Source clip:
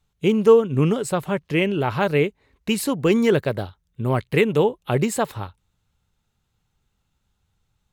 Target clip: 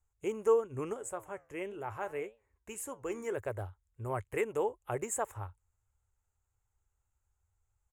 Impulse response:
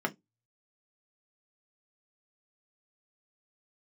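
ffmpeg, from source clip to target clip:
-filter_complex "[0:a]firequalizer=gain_entry='entry(100,0);entry(150,-23);entry(360,-7);entry(870,-3);entry(2100,-7);entry(4200,-27);entry(6900,3);entry(14000,-6)':delay=0.05:min_phase=1,asplit=3[link_01][link_02][link_03];[link_01]afade=type=out:start_time=0.93:duration=0.02[link_04];[link_02]flanger=delay=8.4:depth=5.4:regen=81:speed=1.7:shape=triangular,afade=type=in:start_time=0.93:duration=0.02,afade=type=out:start_time=3.36:duration=0.02[link_05];[link_03]afade=type=in:start_time=3.36:duration=0.02[link_06];[link_04][link_05][link_06]amix=inputs=3:normalize=0,volume=-7dB"

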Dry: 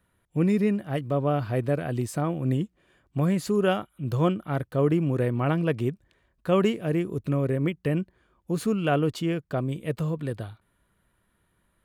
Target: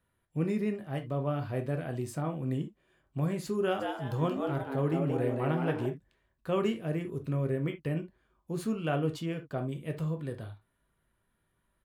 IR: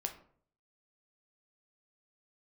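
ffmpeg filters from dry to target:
-filter_complex "[0:a]asplit=3[link_01][link_02][link_03];[link_01]afade=type=out:start_time=3.79:duration=0.02[link_04];[link_02]asplit=5[link_05][link_06][link_07][link_08][link_09];[link_06]adelay=177,afreqshift=130,volume=-5dB[link_10];[link_07]adelay=354,afreqshift=260,volume=-13.9dB[link_11];[link_08]adelay=531,afreqshift=390,volume=-22.7dB[link_12];[link_09]adelay=708,afreqshift=520,volume=-31.6dB[link_13];[link_05][link_10][link_11][link_12][link_13]amix=inputs=5:normalize=0,afade=type=in:start_time=3.79:duration=0.02,afade=type=out:start_time=5.85:duration=0.02[link_14];[link_03]afade=type=in:start_time=5.85:duration=0.02[link_15];[link_04][link_14][link_15]amix=inputs=3:normalize=0[link_16];[1:a]atrim=start_sample=2205,atrim=end_sample=3528[link_17];[link_16][link_17]afir=irnorm=-1:irlink=0,volume=-6.5dB"

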